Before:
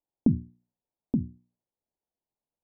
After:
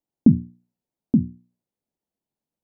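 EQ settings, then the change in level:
parametric band 200 Hz +9.5 dB 1.9 octaves
0.0 dB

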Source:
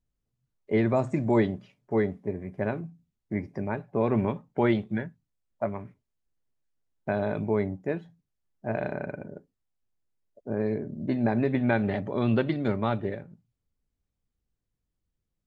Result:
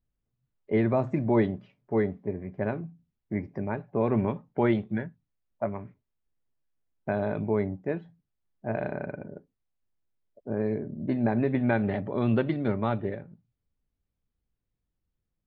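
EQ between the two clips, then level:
high-frequency loss of the air 200 metres
0.0 dB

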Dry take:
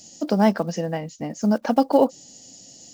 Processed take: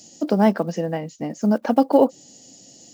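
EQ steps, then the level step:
high-pass filter 81 Hz
dynamic equaliser 5,500 Hz, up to −5 dB, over −47 dBFS, Q 1.3
parametric band 360 Hz +3.5 dB 1.1 octaves
0.0 dB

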